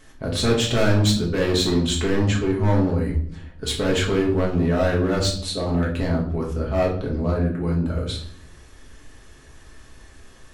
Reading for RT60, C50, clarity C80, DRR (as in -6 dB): 0.60 s, 7.0 dB, 11.0 dB, -3.0 dB